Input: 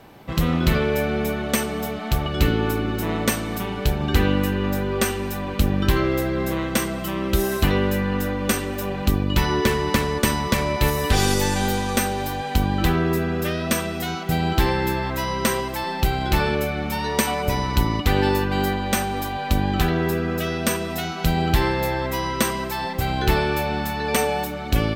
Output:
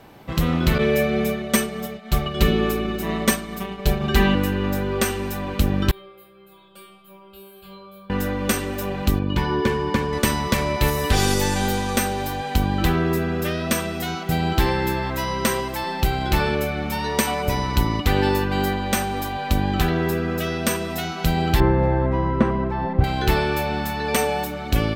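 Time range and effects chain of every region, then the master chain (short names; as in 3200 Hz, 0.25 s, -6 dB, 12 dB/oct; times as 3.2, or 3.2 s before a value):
0.78–4.35 expander -22 dBFS + comb 5.1 ms, depth 79%
5.91–8.1 low shelf 100 Hz -9.5 dB + fixed phaser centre 1300 Hz, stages 8 + metallic resonator 190 Hz, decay 0.81 s, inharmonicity 0.002
9.19–10.13 LPF 2600 Hz 6 dB/oct + notch comb 660 Hz
21.6–23.04 LPF 1400 Hz + low shelf 360 Hz +9 dB
whole clip: dry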